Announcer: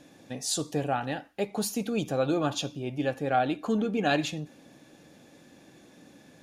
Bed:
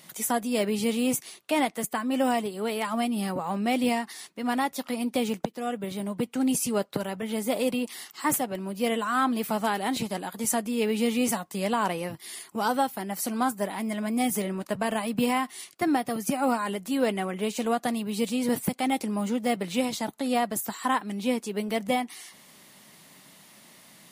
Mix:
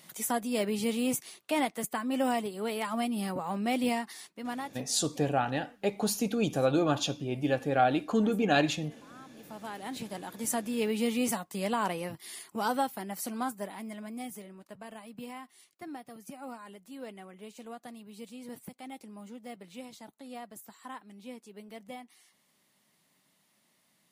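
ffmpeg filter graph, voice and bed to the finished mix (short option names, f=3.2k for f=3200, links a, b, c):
-filter_complex "[0:a]adelay=4450,volume=0.5dB[a];[1:a]volume=19.5dB,afade=t=out:st=4.13:d=0.8:silence=0.0668344,afade=t=in:st=9.33:d=1.36:silence=0.0668344,afade=t=out:st=12.74:d=1.72:silence=0.199526[b];[a][b]amix=inputs=2:normalize=0"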